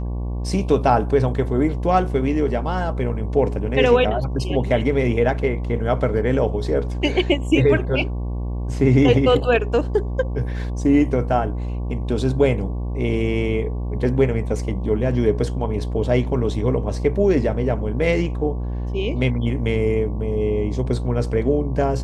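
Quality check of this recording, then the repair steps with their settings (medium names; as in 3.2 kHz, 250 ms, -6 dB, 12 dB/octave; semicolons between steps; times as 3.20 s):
buzz 60 Hz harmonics 19 -25 dBFS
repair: de-hum 60 Hz, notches 19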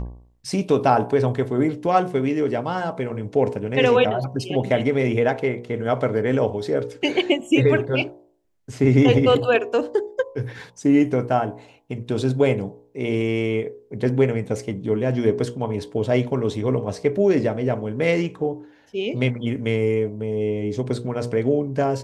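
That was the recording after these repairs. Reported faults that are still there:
nothing left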